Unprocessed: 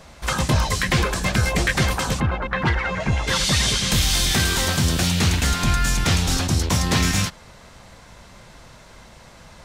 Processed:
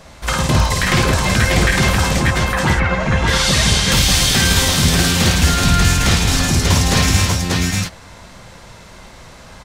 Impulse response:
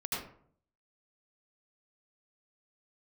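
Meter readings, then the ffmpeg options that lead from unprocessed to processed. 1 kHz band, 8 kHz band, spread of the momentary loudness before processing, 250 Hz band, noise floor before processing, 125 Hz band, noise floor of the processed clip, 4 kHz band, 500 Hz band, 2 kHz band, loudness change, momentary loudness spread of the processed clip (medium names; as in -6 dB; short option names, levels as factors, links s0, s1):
+6.0 dB, +6.0 dB, 5 LU, +6.0 dB, -46 dBFS, +6.0 dB, -40 dBFS, +6.0 dB, +6.5 dB, +6.5 dB, +6.0 dB, 4 LU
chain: -af "aecho=1:1:53|266|582|593:0.668|0.266|0.398|0.668,volume=1.41"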